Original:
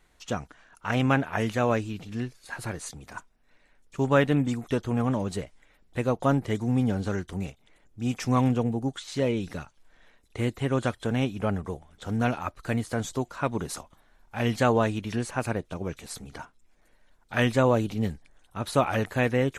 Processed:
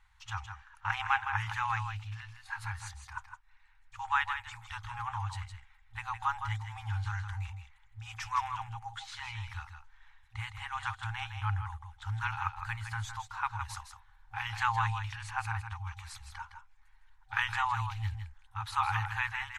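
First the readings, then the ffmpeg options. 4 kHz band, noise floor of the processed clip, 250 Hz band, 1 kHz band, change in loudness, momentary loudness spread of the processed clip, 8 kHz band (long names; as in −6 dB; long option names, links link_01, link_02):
−4.5 dB, −62 dBFS, below −35 dB, −1.5 dB, −8.0 dB, 16 LU, −9.5 dB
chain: -filter_complex "[0:a]afftfilt=real='re*(1-between(b*sr/4096,110,770))':imag='im*(1-between(b*sr/4096,110,770))':win_size=4096:overlap=0.75,lowpass=frequency=2300:poles=1,asplit=2[link_01][link_02];[link_02]aecho=0:1:161:0.398[link_03];[link_01][link_03]amix=inputs=2:normalize=0"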